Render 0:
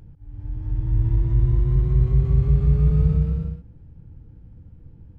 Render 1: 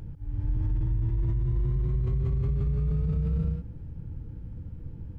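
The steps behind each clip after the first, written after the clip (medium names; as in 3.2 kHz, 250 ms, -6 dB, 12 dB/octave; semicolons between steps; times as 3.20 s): band-stop 750 Hz, Q 12; in parallel at +2 dB: compressor with a negative ratio -24 dBFS; on the sum: peak limiter -15.5 dBFS, peak gain reduction 10 dB; trim -5 dB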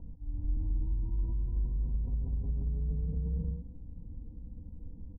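rippled Chebyshev low-pass 980 Hz, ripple 3 dB; bass shelf 160 Hz +5.5 dB; comb 4 ms, depth 74%; trim -8.5 dB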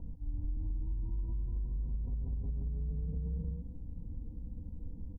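compression, threshold -34 dBFS, peak gain reduction 8 dB; trim +2 dB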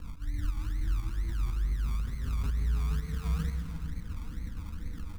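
tremolo saw up 2 Hz, depth 40%; decimation with a swept rate 30×, swing 60% 2.2 Hz; reverberation RT60 3.3 s, pre-delay 113 ms, DRR 8.5 dB; trim +5.5 dB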